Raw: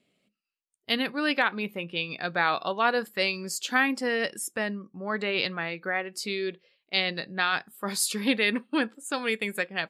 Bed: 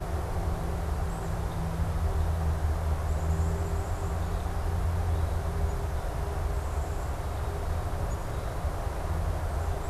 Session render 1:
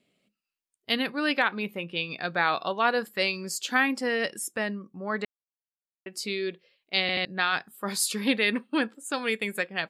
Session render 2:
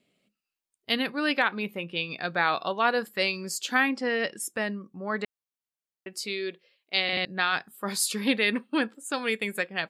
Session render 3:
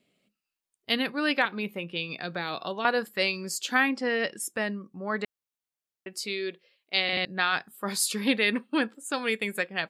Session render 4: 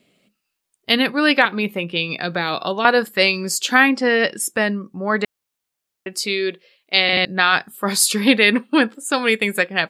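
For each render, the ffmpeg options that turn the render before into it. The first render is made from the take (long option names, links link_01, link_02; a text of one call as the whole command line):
ffmpeg -i in.wav -filter_complex "[0:a]asplit=6[link_01][link_02][link_03][link_04][link_05][link_06];[link_01]atrim=end=5.25,asetpts=PTS-STARTPTS,afade=type=out:start_time=5.246:duration=0.004:curve=hsin[link_07];[link_02]atrim=start=5.25:end=6.06,asetpts=PTS-STARTPTS,volume=0[link_08];[link_03]atrim=start=6.06:end=7.092,asetpts=PTS-STARTPTS,afade=type=in:duration=0.004:curve=hsin[link_09];[link_04]atrim=start=7.008:end=7.092[link_10];[link_05]atrim=start=7.008:end=7.092[link_11];[link_06]atrim=start=7.248[link_12];[link_07][link_08][link_09]concat=n=3:v=0:a=1[link_13];[link_13][link_10]acrossfade=duration=0.004:curve1=hsin:curve2=hsin[link_14];[link_14][link_11]acrossfade=duration=0.004:curve1=hsin:curve2=hsin[link_15];[link_15][link_12]acrossfade=duration=0.004:curve1=hsin:curve2=hsin" out.wav
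ffmpeg -i in.wav -filter_complex "[0:a]asettb=1/sr,asplit=3[link_01][link_02][link_03];[link_01]atrim=end=3.894[link_04];[link_02]atrim=start=3.89:end=4.4,asetpts=PTS-STARTPTS,afade=type=in:duration=0.004:curve=qsin,afade=type=out:start_time=0.506:duration=0.004:curve=qsin,lowpass=5000[link_05];[link_03]atrim=start=4.396[link_06];[link_04][link_05]acrossfade=duration=0.004:curve1=hsin:curve2=qsin[link_07];[link_07][link_06]acrossfade=duration=0.004:curve1=qsin:curve2=hsin,asettb=1/sr,asplit=3[link_08][link_09][link_10];[link_08]atrim=end=6.134[link_11];[link_09]atrim=start=6.13:end=7.13,asetpts=PTS-STARTPTS,afade=type=in:duration=0.004:curve=qsin,afade=type=out:start_time=0.996:duration=0.004:curve=qsin,highpass=frequency=290:poles=1[link_12];[link_10]atrim=start=7.126[link_13];[link_11][link_12]acrossfade=duration=0.004:curve1=hsin:curve2=qsin[link_14];[link_14][link_13]acrossfade=duration=0.004:curve1=qsin:curve2=hsin" out.wav
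ffmpeg -i in.wav -filter_complex "[0:a]asettb=1/sr,asplit=3[link_01][link_02][link_03];[link_01]atrim=end=1.454[link_04];[link_02]atrim=start=1.45:end=2.85,asetpts=PTS-STARTPTS,afade=type=in:duration=0.004:curve=qsin,afade=type=out:start_time=1.396:duration=0.004:curve=qsin,acrossover=split=490|3000[link_05][link_06][link_07];[link_06]acompressor=threshold=-33dB:ratio=6:attack=3.2:release=140:knee=2.83:detection=peak[link_08];[link_05][link_08][link_07]amix=inputs=3:normalize=0[link_09];[link_03]atrim=start=2.846[link_10];[link_04][link_09]acrossfade=duration=0.004:curve1=hsin:curve2=qsin[link_11];[link_11][link_10]acrossfade=duration=0.004:curve1=qsin:curve2=hsin" out.wav
ffmpeg -i in.wav -af "volume=10.5dB,alimiter=limit=-1dB:level=0:latency=1" out.wav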